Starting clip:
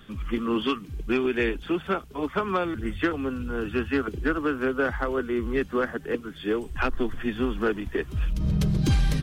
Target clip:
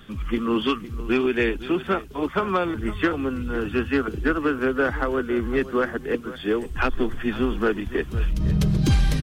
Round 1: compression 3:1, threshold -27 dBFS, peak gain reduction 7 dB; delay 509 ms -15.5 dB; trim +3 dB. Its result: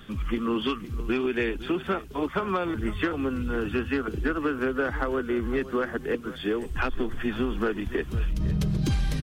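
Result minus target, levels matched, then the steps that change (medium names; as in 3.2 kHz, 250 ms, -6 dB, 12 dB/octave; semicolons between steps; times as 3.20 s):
compression: peak gain reduction +7 dB
remove: compression 3:1, threshold -27 dBFS, peak gain reduction 7 dB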